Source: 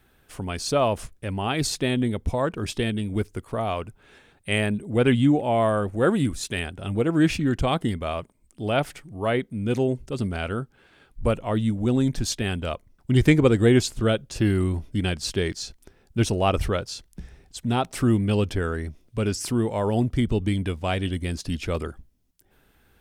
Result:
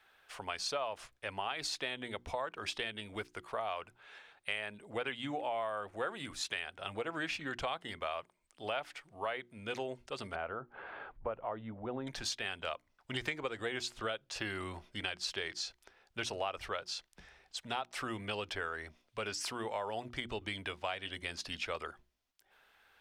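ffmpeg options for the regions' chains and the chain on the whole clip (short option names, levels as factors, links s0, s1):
-filter_complex "[0:a]asettb=1/sr,asplit=3[s0][s1][s2];[s0]atrim=end=10.354[s3];[s1]atrim=start=10.35:end=12.07,asetpts=PTS-STARTPTS,afade=t=in:d=0.004:c=qsin,afade=t=out:st=1.716:d=0.004:c=qsin,lowpass=1100,acompressor=mode=upward:threshold=0.0562:ratio=2.5:attack=3.2:release=140:knee=2.83:detection=peak[s4];[s2]atrim=start=12.066[s5];[s3][s4]acrossfade=d=0.004:c1=hsin:c2=qsin[s6];[s6][s5]acrossfade=d=0.004:c1=qsin:c2=hsin,acrossover=split=590 5500:gain=0.0794 1 0.224[s7][s8][s9];[s7][s8][s9]amix=inputs=3:normalize=0,bandreject=f=60:t=h:w=6,bandreject=f=120:t=h:w=6,bandreject=f=180:t=h:w=6,bandreject=f=240:t=h:w=6,bandreject=f=300:t=h:w=6,bandreject=f=360:t=h:w=6,acompressor=threshold=0.02:ratio=6"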